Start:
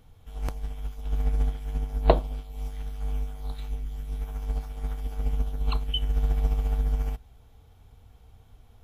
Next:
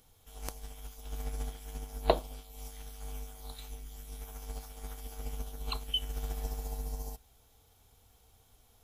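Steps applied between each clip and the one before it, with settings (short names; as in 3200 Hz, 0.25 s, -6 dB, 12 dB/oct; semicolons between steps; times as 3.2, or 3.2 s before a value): spectral repair 6.39–7.13, 1100–3800 Hz both; tone controls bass -8 dB, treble +13 dB; gain -5 dB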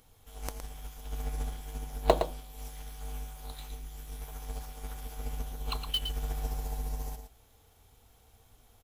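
in parallel at -9 dB: sample-rate reducer 7300 Hz, jitter 20%; on the sum: echo 0.114 s -8 dB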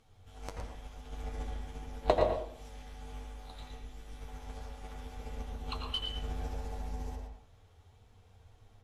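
flange 1.5 Hz, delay 8.6 ms, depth 3.5 ms, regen +42%; air absorption 70 m; reverb RT60 0.55 s, pre-delay 80 ms, DRR 1 dB; gain +1 dB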